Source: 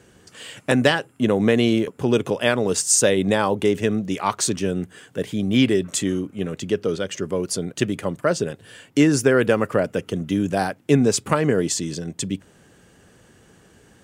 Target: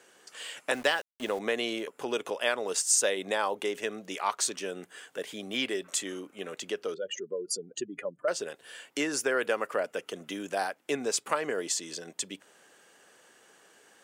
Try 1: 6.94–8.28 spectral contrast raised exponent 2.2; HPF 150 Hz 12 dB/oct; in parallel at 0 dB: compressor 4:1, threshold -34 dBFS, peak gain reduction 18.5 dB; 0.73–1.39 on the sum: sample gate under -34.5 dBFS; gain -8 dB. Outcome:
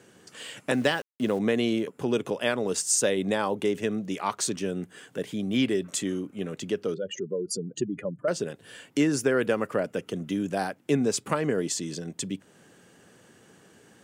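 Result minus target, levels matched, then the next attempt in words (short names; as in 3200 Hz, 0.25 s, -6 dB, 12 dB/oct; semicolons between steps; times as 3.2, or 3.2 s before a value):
125 Hz band +14.5 dB
6.94–8.28 spectral contrast raised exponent 2.2; HPF 560 Hz 12 dB/oct; in parallel at 0 dB: compressor 4:1, threshold -34 dBFS, peak gain reduction 17 dB; 0.73–1.39 on the sum: sample gate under -34.5 dBFS; gain -8 dB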